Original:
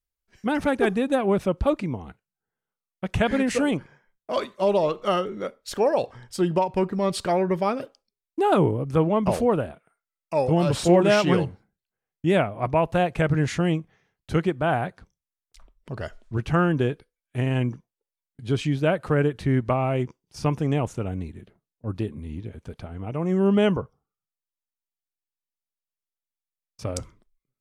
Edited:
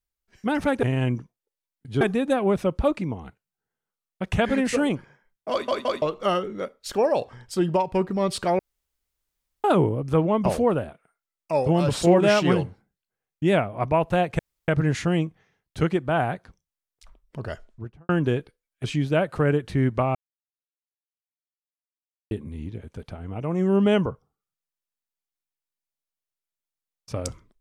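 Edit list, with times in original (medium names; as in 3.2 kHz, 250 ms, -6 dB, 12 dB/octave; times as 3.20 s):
4.33 s: stutter in place 0.17 s, 3 plays
7.41–8.46 s: room tone
13.21 s: insert room tone 0.29 s
15.99–16.62 s: studio fade out
17.37–18.55 s: move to 0.83 s
19.86–22.02 s: mute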